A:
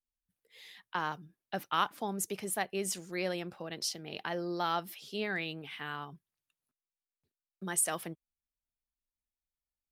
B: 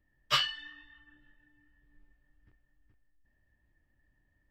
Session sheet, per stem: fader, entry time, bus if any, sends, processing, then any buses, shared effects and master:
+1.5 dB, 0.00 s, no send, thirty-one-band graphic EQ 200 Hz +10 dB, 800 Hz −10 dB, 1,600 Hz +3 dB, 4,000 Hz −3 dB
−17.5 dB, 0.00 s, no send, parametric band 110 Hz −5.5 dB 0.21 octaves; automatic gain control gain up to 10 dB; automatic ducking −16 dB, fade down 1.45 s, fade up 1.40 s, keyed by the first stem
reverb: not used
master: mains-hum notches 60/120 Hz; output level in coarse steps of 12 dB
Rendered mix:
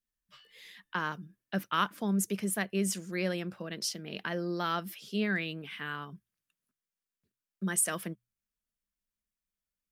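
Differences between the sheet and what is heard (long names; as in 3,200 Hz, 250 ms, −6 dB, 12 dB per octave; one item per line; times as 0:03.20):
stem B −17.5 dB → −29.5 dB
master: missing output level in coarse steps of 12 dB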